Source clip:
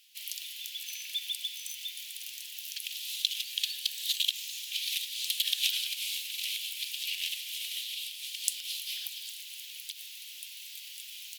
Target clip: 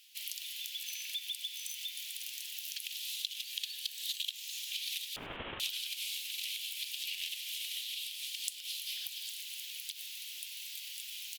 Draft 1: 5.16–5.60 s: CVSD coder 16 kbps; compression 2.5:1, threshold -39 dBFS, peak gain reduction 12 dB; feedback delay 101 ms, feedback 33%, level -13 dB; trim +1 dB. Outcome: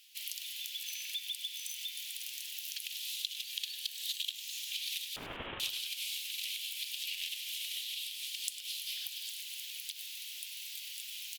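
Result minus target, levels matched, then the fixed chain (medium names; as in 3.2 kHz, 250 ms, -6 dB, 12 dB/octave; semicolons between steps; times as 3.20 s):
echo-to-direct +8.5 dB
5.16–5.60 s: CVSD coder 16 kbps; compression 2.5:1, threshold -39 dBFS, peak gain reduction 12 dB; feedback delay 101 ms, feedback 33%, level -21.5 dB; trim +1 dB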